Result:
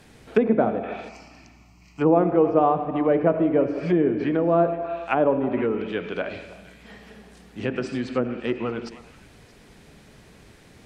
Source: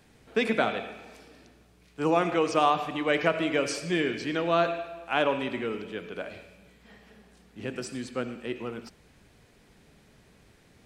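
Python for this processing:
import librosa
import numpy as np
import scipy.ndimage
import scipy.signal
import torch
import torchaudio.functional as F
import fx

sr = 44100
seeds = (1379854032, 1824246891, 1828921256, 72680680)

y = fx.env_lowpass_down(x, sr, base_hz=670.0, full_db=-25.5)
y = fx.fixed_phaser(y, sr, hz=2400.0, stages=8, at=(1.08, 2.0), fade=0.02)
y = fx.echo_stepped(y, sr, ms=157, hz=320.0, octaves=1.4, feedback_pct=70, wet_db=-10.0)
y = F.gain(torch.from_numpy(y), 8.0).numpy()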